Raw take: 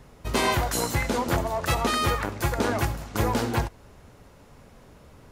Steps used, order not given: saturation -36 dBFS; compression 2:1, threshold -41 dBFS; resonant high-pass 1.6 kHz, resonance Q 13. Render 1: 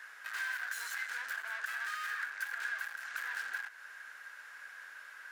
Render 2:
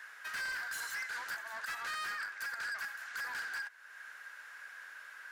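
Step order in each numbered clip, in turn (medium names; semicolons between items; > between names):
saturation > resonant high-pass > compression; resonant high-pass > compression > saturation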